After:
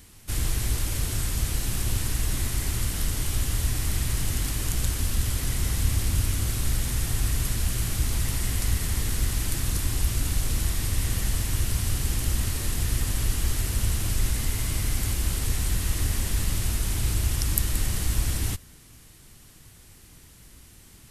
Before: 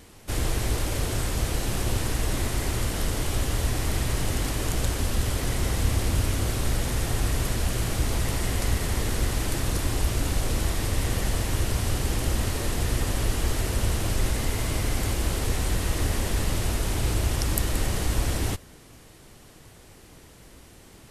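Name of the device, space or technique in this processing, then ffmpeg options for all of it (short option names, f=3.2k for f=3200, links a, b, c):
smiley-face EQ: -af "lowshelf=f=160:g=3,equalizer=f=550:t=o:w=1.8:g=-9,highshelf=f=7.7k:g=8,volume=-2dB"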